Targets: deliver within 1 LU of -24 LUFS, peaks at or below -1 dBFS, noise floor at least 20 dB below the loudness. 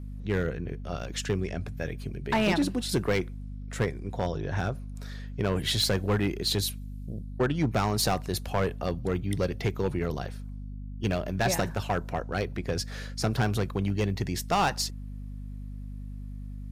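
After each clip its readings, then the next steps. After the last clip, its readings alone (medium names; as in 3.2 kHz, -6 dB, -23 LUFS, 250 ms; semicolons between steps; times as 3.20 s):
clipped samples 1.0%; clipping level -19.0 dBFS; hum 50 Hz; highest harmonic 250 Hz; hum level -36 dBFS; loudness -29.5 LUFS; peak level -19.0 dBFS; loudness target -24.0 LUFS
-> clip repair -19 dBFS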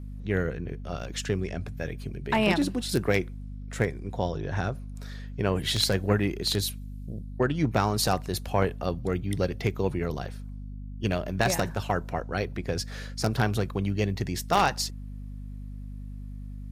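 clipped samples 0.0%; hum 50 Hz; highest harmonic 250 Hz; hum level -36 dBFS
-> de-hum 50 Hz, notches 5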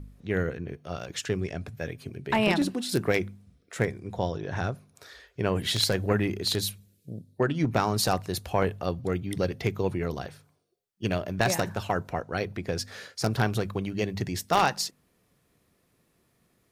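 hum not found; loudness -29.0 LUFS; peak level -9.5 dBFS; loudness target -24.0 LUFS
-> trim +5 dB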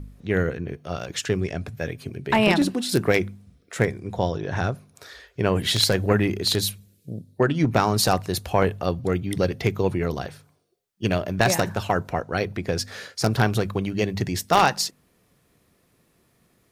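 loudness -24.0 LUFS; peak level -4.5 dBFS; noise floor -65 dBFS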